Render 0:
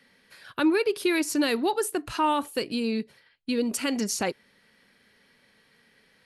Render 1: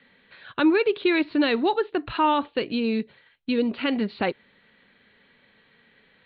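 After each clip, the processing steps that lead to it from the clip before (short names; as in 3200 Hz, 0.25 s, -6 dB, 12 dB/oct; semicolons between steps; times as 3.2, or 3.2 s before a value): steep low-pass 4100 Hz 96 dB/oct; gain +3 dB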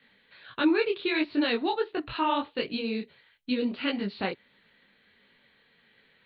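high shelf 3900 Hz +9.5 dB; detuned doubles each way 52 cents; gain -2 dB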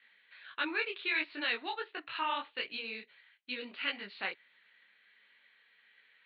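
band-pass 2100 Hz, Q 1.2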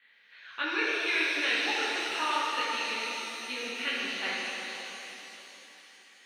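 shimmer reverb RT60 3.5 s, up +7 st, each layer -8 dB, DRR -5 dB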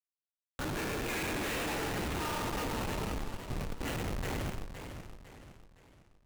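Schmitt trigger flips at -28 dBFS; warbling echo 0.509 s, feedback 40%, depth 187 cents, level -9 dB; gain -2 dB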